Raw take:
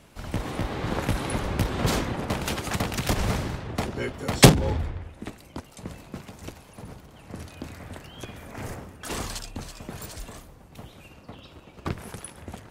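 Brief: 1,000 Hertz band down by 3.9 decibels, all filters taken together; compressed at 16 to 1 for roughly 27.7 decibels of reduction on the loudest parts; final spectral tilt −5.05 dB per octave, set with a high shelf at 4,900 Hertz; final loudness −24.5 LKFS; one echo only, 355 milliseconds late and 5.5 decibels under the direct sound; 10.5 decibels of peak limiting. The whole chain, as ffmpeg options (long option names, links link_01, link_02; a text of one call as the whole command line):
ffmpeg -i in.wav -af "equalizer=frequency=1000:width_type=o:gain=-5,highshelf=frequency=4900:gain=-5,acompressor=threshold=-36dB:ratio=16,alimiter=level_in=7.5dB:limit=-24dB:level=0:latency=1,volume=-7.5dB,aecho=1:1:355:0.531,volume=18.5dB" out.wav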